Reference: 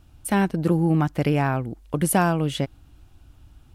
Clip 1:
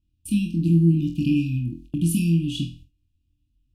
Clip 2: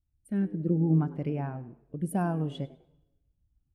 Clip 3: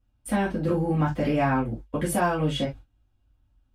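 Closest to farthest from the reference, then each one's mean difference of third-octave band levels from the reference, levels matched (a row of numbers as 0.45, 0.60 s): 3, 2, 1; 4.5, 7.5, 10.0 dB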